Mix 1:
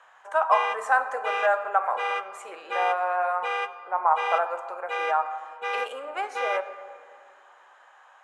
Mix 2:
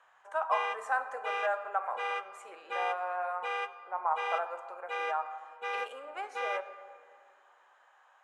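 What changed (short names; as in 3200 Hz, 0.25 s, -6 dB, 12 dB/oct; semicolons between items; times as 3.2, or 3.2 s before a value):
speech -9.0 dB; background -6.0 dB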